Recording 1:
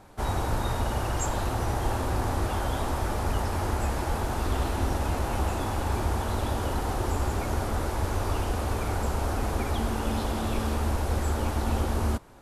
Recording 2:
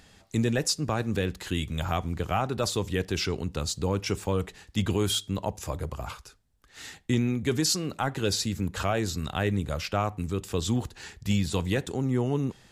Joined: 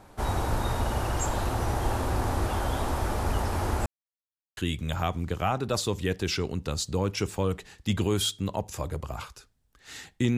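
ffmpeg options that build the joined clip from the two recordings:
-filter_complex "[0:a]apad=whole_dur=10.37,atrim=end=10.37,asplit=2[s0][s1];[s0]atrim=end=3.86,asetpts=PTS-STARTPTS,afade=t=out:st=3.856:d=0.004:c=hsin[s2];[s1]atrim=start=3.86:end=4.57,asetpts=PTS-STARTPTS,volume=0[s3];[1:a]atrim=start=1.46:end=7.26,asetpts=PTS-STARTPTS,afade=t=in:d=0.004:c=hsin[s4];[s2][s3][s4]concat=n=3:v=0:a=1"

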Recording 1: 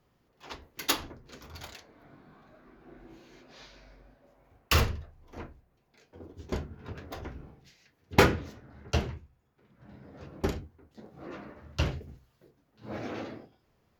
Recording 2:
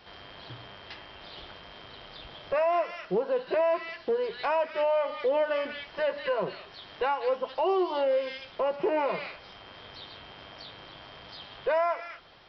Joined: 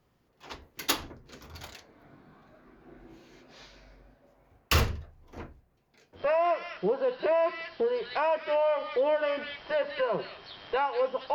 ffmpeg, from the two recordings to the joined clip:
-filter_complex "[0:a]apad=whole_dur=11.34,atrim=end=11.34,atrim=end=6.26,asetpts=PTS-STARTPTS[s0];[1:a]atrim=start=2.42:end=7.62,asetpts=PTS-STARTPTS[s1];[s0][s1]acrossfade=d=0.12:c1=tri:c2=tri"

